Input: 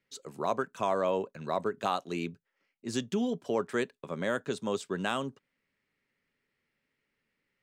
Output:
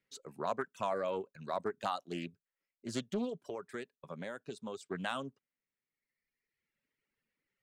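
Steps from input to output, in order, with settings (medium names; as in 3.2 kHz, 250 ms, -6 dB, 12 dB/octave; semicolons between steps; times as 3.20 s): reverb removal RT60 1.5 s; 3.41–4.86 s: compression 3:1, threshold -36 dBFS, peak gain reduction 8.5 dB; loudspeaker Doppler distortion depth 0.28 ms; trim -4.5 dB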